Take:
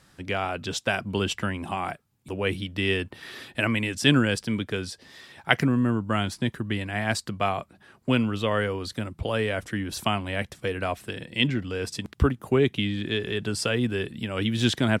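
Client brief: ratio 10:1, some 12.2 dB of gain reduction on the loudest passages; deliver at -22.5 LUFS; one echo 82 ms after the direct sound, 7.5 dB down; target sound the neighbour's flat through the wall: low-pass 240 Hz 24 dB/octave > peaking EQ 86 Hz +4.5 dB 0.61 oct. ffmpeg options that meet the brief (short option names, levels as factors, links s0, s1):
-af "acompressor=threshold=0.0447:ratio=10,lowpass=f=240:w=0.5412,lowpass=f=240:w=1.3066,equalizer=f=86:t=o:w=0.61:g=4.5,aecho=1:1:82:0.422,volume=5.01"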